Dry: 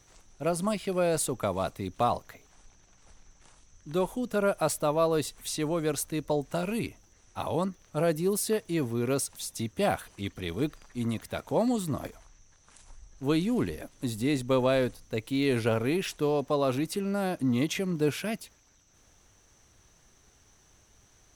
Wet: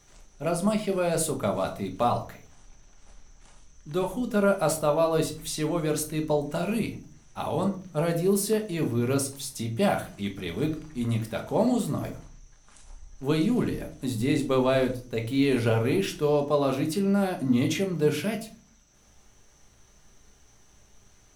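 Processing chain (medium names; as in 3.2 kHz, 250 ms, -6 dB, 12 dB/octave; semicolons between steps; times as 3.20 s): simulated room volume 320 m³, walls furnished, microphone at 1.3 m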